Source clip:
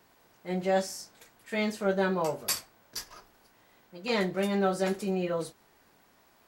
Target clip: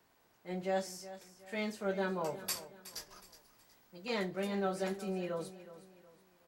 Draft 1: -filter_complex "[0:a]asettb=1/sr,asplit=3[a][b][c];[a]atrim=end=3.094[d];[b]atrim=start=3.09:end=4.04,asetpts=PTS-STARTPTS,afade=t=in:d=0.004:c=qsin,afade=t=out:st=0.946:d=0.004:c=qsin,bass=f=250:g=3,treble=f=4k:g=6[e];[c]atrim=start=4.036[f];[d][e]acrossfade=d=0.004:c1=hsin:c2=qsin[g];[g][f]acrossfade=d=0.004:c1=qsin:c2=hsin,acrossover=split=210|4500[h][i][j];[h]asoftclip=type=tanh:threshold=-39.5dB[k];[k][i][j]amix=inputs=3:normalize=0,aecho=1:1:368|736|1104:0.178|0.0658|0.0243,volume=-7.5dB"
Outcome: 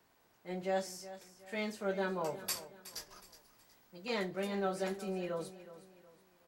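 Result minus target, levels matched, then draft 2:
soft clip: distortion +10 dB
-filter_complex "[0:a]asettb=1/sr,asplit=3[a][b][c];[a]atrim=end=3.094[d];[b]atrim=start=3.09:end=4.04,asetpts=PTS-STARTPTS,afade=t=in:d=0.004:c=qsin,afade=t=out:st=0.946:d=0.004:c=qsin,bass=f=250:g=3,treble=f=4k:g=6[e];[c]atrim=start=4.036[f];[d][e]acrossfade=d=0.004:c1=hsin:c2=qsin[g];[g][f]acrossfade=d=0.004:c1=qsin:c2=hsin,acrossover=split=210|4500[h][i][j];[h]asoftclip=type=tanh:threshold=-31.5dB[k];[k][i][j]amix=inputs=3:normalize=0,aecho=1:1:368|736|1104:0.178|0.0658|0.0243,volume=-7.5dB"

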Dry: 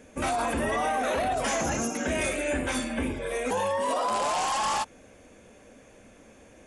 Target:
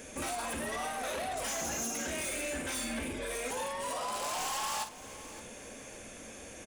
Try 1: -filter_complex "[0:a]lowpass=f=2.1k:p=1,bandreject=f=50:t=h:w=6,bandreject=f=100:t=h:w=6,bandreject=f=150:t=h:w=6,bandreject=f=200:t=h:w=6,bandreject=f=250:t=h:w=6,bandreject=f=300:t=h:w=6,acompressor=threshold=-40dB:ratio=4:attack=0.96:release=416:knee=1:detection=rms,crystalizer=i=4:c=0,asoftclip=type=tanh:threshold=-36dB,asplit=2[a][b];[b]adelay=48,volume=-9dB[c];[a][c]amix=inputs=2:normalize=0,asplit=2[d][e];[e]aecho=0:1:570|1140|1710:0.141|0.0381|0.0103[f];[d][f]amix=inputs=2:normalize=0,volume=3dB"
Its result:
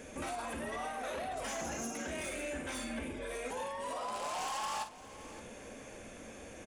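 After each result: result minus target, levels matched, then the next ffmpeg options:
compressor: peak gain reduction +4.5 dB; 8000 Hz band -3.5 dB
-filter_complex "[0:a]lowpass=f=2.1k:p=1,bandreject=f=50:t=h:w=6,bandreject=f=100:t=h:w=6,bandreject=f=150:t=h:w=6,bandreject=f=200:t=h:w=6,bandreject=f=250:t=h:w=6,bandreject=f=300:t=h:w=6,acompressor=threshold=-33.5dB:ratio=4:attack=0.96:release=416:knee=1:detection=rms,crystalizer=i=4:c=0,asoftclip=type=tanh:threshold=-36dB,asplit=2[a][b];[b]adelay=48,volume=-9dB[c];[a][c]amix=inputs=2:normalize=0,asplit=2[d][e];[e]aecho=0:1:570|1140|1710:0.141|0.0381|0.0103[f];[d][f]amix=inputs=2:normalize=0,volume=3dB"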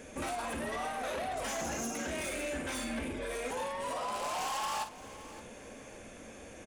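8000 Hz band -4.5 dB
-filter_complex "[0:a]lowpass=f=6.3k:p=1,bandreject=f=50:t=h:w=6,bandreject=f=100:t=h:w=6,bandreject=f=150:t=h:w=6,bandreject=f=200:t=h:w=6,bandreject=f=250:t=h:w=6,bandreject=f=300:t=h:w=6,acompressor=threshold=-33.5dB:ratio=4:attack=0.96:release=416:knee=1:detection=rms,crystalizer=i=4:c=0,asoftclip=type=tanh:threshold=-36dB,asplit=2[a][b];[b]adelay=48,volume=-9dB[c];[a][c]amix=inputs=2:normalize=0,asplit=2[d][e];[e]aecho=0:1:570|1140|1710:0.141|0.0381|0.0103[f];[d][f]amix=inputs=2:normalize=0,volume=3dB"

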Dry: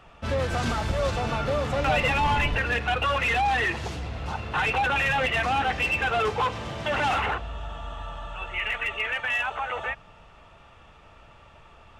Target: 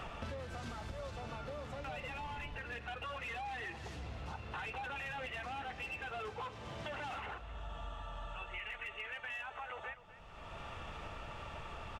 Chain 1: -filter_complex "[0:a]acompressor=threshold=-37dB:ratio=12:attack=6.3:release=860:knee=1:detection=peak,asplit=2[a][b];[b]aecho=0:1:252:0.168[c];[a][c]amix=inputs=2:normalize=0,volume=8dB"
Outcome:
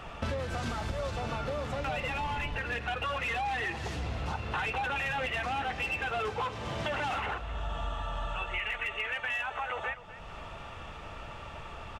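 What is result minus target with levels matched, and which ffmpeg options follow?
compressor: peak gain reduction -10 dB
-filter_complex "[0:a]acompressor=threshold=-48dB:ratio=12:attack=6.3:release=860:knee=1:detection=peak,asplit=2[a][b];[b]aecho=0:1:252:0.168[c];[a][c]amix=inputs=2:normalize=0,volume=8dB"

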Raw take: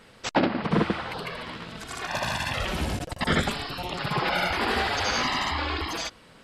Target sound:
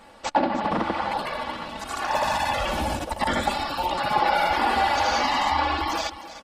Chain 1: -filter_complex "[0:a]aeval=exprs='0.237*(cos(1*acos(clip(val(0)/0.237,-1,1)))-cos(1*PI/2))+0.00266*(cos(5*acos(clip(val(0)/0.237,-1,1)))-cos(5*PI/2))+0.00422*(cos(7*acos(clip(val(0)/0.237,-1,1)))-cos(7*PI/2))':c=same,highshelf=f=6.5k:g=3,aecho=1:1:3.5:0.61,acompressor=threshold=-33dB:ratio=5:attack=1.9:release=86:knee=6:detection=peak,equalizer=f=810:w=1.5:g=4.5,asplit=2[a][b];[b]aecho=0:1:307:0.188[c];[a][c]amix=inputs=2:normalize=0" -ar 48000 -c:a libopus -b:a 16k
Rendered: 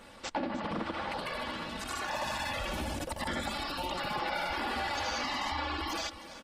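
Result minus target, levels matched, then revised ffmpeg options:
compressor: peak gain reduction +8.5 dB; 1000 Hz band -2.5 dB
-filter_complex "[0:a]aeval=exprs='0.237*(cos(1*acos(clip(val(0)/0.237,-1,1)))-cos(1*PI/2))+0.00266*(cos(5*acos(clip(val(0)/0.237,-1,1)))-cos(5*PI/2))+0.00422*(cos(7*acos(clip(val(0)/0.237,-1,1)))-cos(7*PI/2))':c=same,highshelf=f=6.5k:g=3,aecho=1:1:3.5:0.61,acompressor=threshold=-22.5dB:ratio=5:attack=1.9:release=86:knee=6:detection=peak,equalizer=f=810:w=1.5:g=11.5,asplit=2[a][b];[b]aecho=0:1:307:0.188[c];[a][c]amix=inputs=2:normalize=0" -ar 48000 -c:a libopus -b:a 16k

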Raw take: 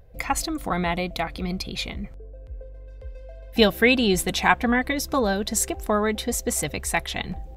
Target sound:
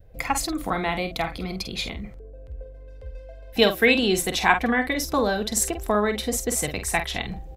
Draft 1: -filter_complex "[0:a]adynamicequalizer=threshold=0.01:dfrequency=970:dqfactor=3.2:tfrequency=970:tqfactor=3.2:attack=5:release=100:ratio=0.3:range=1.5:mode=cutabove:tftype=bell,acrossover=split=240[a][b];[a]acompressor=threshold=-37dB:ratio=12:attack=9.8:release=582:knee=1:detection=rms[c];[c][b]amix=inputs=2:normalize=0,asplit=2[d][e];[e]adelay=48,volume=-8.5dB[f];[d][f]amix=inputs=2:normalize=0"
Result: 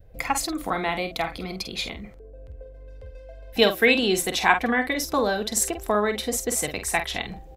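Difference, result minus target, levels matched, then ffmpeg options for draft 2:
compressor: peak gain reduction +6.5 dB
-filter_complex "[0:a]adynamicequalizer=threshold=0.01:dfrequency=970:dqfactor=3.2:tfrequency=970:tqfactor=3.2:attack=5:release=100:ratio=0.3:range=1.5:mode=cutabove:tftype=bell,acrossover=split=240[a][b];[a]acompressor=threshold=-30dB:ratio=12:attack=9.8:release=582:knee=1:detection=rms[c];[c][b]amix=inputs=2:normalize=0,asplit=2[d][e];[e]adelay=48,volume=-8.5dB[f];[d][f]amix=inputs=2:normalize=0"

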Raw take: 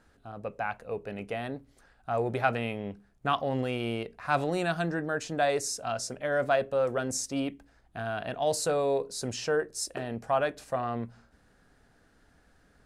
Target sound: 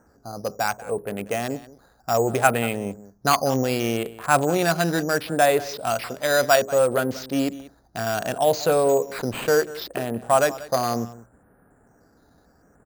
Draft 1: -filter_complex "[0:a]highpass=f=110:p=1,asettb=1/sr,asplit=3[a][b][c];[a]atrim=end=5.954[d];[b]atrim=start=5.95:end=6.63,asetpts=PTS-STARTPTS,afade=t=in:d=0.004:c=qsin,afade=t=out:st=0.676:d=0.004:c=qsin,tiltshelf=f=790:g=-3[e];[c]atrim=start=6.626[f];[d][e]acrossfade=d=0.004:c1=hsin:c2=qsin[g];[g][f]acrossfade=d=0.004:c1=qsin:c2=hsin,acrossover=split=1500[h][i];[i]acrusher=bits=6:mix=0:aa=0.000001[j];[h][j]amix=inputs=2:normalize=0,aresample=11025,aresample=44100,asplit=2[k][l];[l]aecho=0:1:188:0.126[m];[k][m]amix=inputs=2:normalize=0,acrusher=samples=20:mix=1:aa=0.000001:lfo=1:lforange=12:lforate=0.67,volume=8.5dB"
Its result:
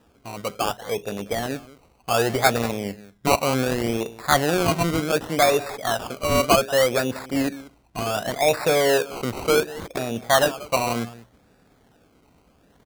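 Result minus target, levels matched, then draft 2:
decimation with a swept rate: distortion +11 dB
-filter_complex "[0:a]highpass=f=110:p=1,asettb=1/sr,asplit=3[a][b][c];[a]atrim=end=5.954[d];[b]atrim=start=5.95:end=6.63,asetpts=PTS-STARTPTS,afade=t=in:d=0.004:c=qsin,afade=t=out:st=0.676:d=0.004:c=qsin,tiltshelf=f=790:g=-3[e];[c]atrim=start=6.626[f];[d][e]acrossfade=d=0.004:c1=hsin:c2=qsin[g];[g][f]acrossfade=d=0.004:c1=qsin:c2=hsin,acrossover=split=1500[h][i];[i]acrusher=bits=6:mix=0:aa=0.000001[j];[h][j]amix=inputs=2:normalize=0,aresample=11025,aresample=44100,asplit=2[k][l];[l]aecho=0:1:188:0.126[m];[k][m]amix=inputs=2:normalize=0,acrusher=samples=6:mix=1:aa=0.000001:lfo=1:lforange=3.6:lforate=0.67,volume=8.5dB"

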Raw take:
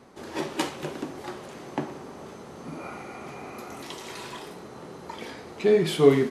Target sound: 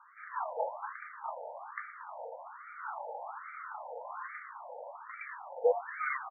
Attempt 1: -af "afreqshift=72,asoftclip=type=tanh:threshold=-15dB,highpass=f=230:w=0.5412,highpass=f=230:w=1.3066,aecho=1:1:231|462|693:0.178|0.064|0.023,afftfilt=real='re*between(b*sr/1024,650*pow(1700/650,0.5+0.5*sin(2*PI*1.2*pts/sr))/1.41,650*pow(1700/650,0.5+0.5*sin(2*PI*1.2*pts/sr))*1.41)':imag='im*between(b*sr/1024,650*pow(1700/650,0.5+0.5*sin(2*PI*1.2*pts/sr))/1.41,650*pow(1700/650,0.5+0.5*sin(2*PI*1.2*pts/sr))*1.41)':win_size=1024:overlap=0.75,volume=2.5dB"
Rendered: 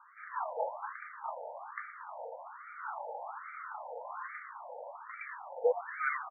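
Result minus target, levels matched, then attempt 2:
soft clip: distortion +8 dB
-af "afreqshift=72,asoftclip=type=tanh:threshold=-8dB,highpass=f=230:w=0.5412,highpass=f=230:w=1.3066,aecho=1:1:231|462|693:0.178|0.064|0.023,afftfilt=real='re*between(b*sr/1024,650*pow(1700/650,0.5+0.5*sin(2*PI*1.2*pts/sr))/1.41,650*pow(1700/650,0.5+0.5*sin(2*PI*1.2*pts/sr))*1.41)':imag='im*between(b*sr/1024,650*pow(1700/650,0.5+0.5*sin(2*PI*1.2*pts/sr))/1.41,650*pow(1700/650,0.5+0.5*sin(2*PI*1.2*pts/sr))*1.41)':win_size=1024:overlap=0.75,volume=2.5dB"

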